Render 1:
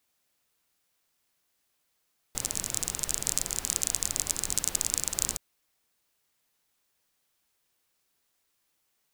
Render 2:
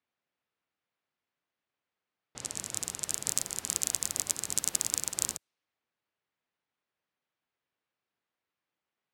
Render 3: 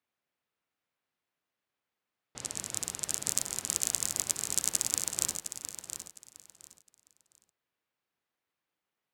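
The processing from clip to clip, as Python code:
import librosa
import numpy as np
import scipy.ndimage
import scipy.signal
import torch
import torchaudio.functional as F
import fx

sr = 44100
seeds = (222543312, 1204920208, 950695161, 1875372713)

y1 = fx.env_lowpass(x, sr, base_hz=2600.0, full_db=-29.0)
y1 = scipy.signal.sosfilt(scipy.signal.butter(2, 91.0, 'highpass', fs=sr, output='sos'), y1)
y1 = fx.upward_expand(y1, sr, threshold_db=-38.0, expansion=1.5)
y2 = fx.echo_feedback(y1, sr, ms=710, feedback_pct=23, wet_db=-9.5)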